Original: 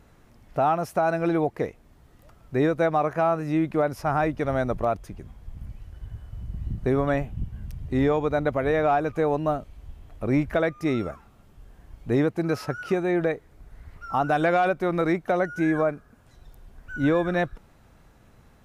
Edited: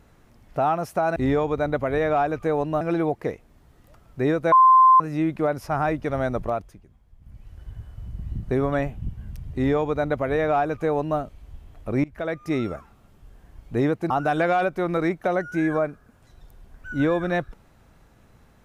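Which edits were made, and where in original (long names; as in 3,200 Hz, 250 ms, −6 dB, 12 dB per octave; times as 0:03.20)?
0:02.87–0:03.35: beep over 1,040 Hz −10 dBFS
0:04.79–0:05.94: duck −13 dB, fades 0.39 s
0:07.89–0:09.54: duplicate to 0:01.16
0:10.39–0:10.81: fade in, from −23.5 dB
0:12.45–0:14.14: remove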